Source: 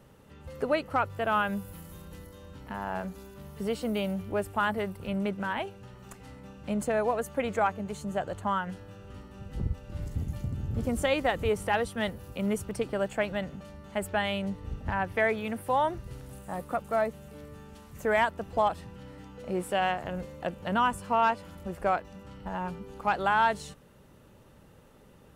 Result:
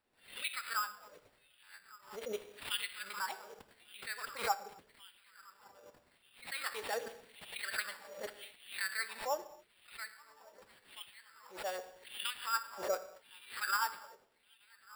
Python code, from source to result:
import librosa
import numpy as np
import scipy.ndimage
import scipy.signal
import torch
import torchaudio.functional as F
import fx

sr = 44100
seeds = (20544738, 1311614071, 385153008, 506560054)

y = fx.peak_eq(x, sr, hz=690.0, db=-13.5, octaves=0.44)
y = fx.tremolo_random(y, sr, seeds[0], hz=3.5, depth_pct=55)
y = fx.notch(y, sr, hz=5100.0, q=9.4)
y = fx.echo_swing(y, sr, ms=744, ratio=1.5, feedback_pct=79, wet_db=-22.5)
y = fx.filter_lfo_highpass(y, sr, shape='saw_down', hz=0.5, low_hz=470.0, high_hz=7500.0, q=5.0)
y = fx.rotary(y, sr, hz=6.0)
y = fx.rider(y, sr, range_db=4, speed_s=0.5)
y = fx.rev_gated(y, sr, seeds[1], gate_ms=470, shape='falling', drr_db=9.5)
y = fx.dynamic_eq(y, sr, hz=960.0, q=6.6, threshold_db=-52.0, ratio=4.0, max_db=-6)
y = fx.stretch_vocoder(y, sr, factor=0.59)
y = fx.sample_hold(y, sr, seeds[2], rate_hz=6300.0, jitter_pct=0)
y = fx.pre_swell(y, sr, db_per_s=130.0)
y = y * librosa.db_to_amplitude(-4.5)